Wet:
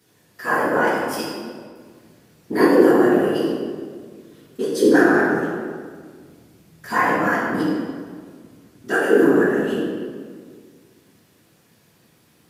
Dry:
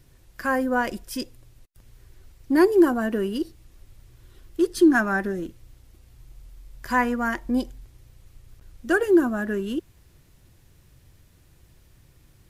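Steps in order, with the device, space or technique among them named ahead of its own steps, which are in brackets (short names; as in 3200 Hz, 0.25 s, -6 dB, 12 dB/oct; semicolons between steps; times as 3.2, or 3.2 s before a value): whispering ghost (whisperiser; HPF 260 Hz 12 dB/oct; reverb RT60 1.8 s, pre-delay 3 ms, DRR -7 dB); gain -2 dB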